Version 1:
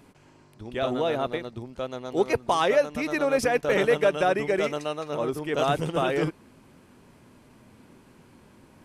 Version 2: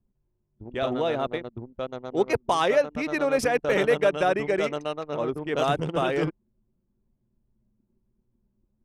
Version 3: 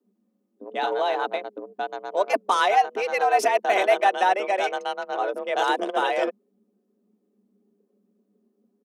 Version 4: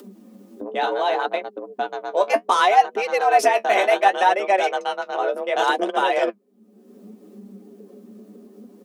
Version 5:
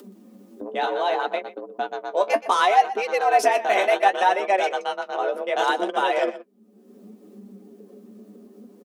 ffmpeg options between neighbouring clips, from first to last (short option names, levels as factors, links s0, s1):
-af "anlmdn=3.98"
-af "aecho=1:1:3.8:0.31,afreqshift=190,volume=1.19"
-af "acompressor=mode=upward:threshold=0.0355:ratio=2.5,flanger=delay=5:depth=8.9:regen=40:speed=0.67:shape=sinusoidal,volume=2.24"
-af "aecho=1:1:123:0.168,volume=0.794"